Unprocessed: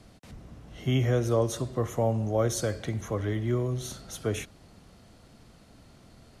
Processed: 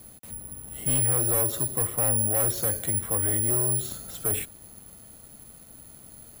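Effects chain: overload inside the chain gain 27 dB; careless resampling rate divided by 4×, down filtered, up zero stuff

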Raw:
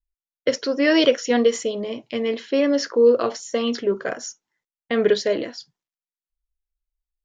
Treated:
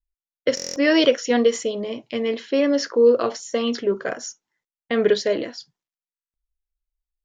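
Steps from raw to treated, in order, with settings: buffer glitch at 0.55/6.13 s, samples 1024, times 8

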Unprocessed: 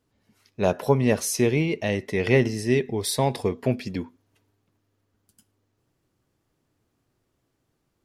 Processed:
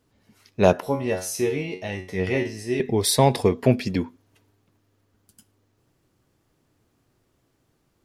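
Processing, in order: 0.80–2.80 s: feedback comb 92 Hz, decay 0.36 s, harmonics all, mix 90%; trim +5.5 dB

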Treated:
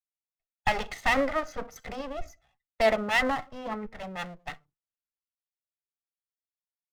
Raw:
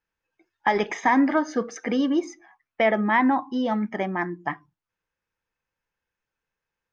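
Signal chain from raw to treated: comb filter that takes the minimum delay 1.5 ms; three bands expanded up and down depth 70%; trim -4 dB

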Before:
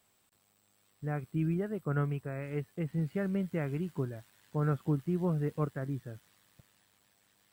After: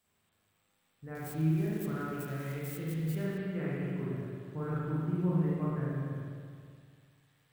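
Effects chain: 1.15–3.38 s: zero-crossing glitches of -34 dBFS; peaking EQ 620 Hz -3.5 dB 1.2 oct; spring tank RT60 2.1 s, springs 38/51 ms, chirp 45 ms, DRR -7 dB; trim -7.5 dB

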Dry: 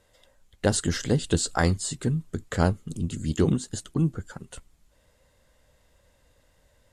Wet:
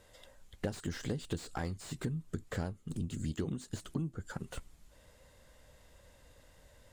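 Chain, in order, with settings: compression 8:1, threshold -36 dBFS, peak gain reduction 20 dB; slew-rate limiter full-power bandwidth 19 Hz; trim +2.5 dB

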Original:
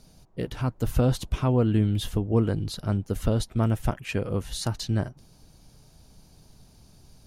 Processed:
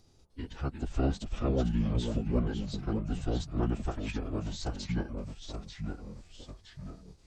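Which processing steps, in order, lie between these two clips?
ever faster or slower copies 305 ms, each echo -2 st, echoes 3, each echo -6 dB; formant-preserving pitch shift -11 st; trim -6.5 dB

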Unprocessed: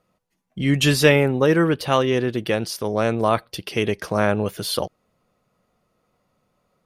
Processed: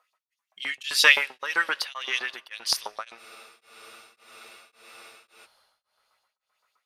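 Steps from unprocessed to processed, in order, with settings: in parallel at -9 dB: one-sided clip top -22 dBFS; on the sum: LFO high-pass saw up 7.7 Hz 890–4800 Hz; on a send at -22.5 dB: bass shelf 160 Hz +10.5 dB + reverberation RT60 3.8 s, pre-delay 6 ms; on the sum: dynamic bell 4.5 kHz, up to +4 dB, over -31 dBFS, Q 0.74; spectral freeze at 3.20 s, 2.25 s; tremolo of two beating tones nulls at 1.8 Hz; trim -3.5 dB

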